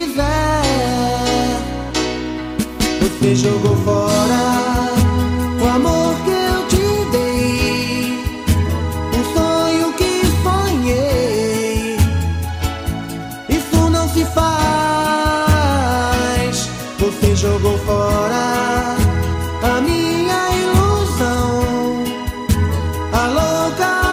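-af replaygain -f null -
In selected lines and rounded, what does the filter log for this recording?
track_gain = -1.0 dB
track_peak = 0.405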